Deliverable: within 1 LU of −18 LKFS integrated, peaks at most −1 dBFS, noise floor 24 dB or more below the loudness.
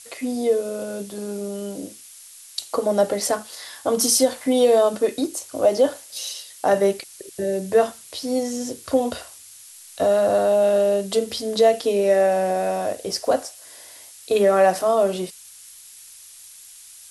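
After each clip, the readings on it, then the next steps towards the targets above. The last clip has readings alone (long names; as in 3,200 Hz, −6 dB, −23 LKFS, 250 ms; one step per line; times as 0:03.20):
background noise floor −45 dBFS; target noise floor −46 dBFS; integrated loudness −21.5 LKFS; sample peak −6.0 dBFS; target loudness −18.0 LKFS
→ noise reduction from a noise print 6 dB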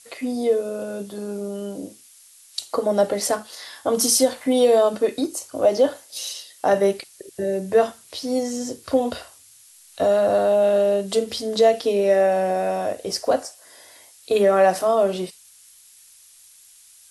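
background noise floor −51 dBFS; integrated loudness −21.5 LKFS; sample peak −6.0 dBFS; target loudness −18.0 LKFS
→ level +3.5 dB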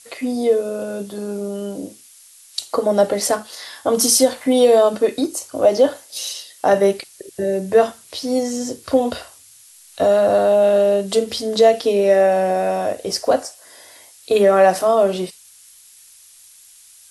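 integrated loudness −18.0 LKFS; sample peak −2.5 dBFS; background noise floor −47 dBFS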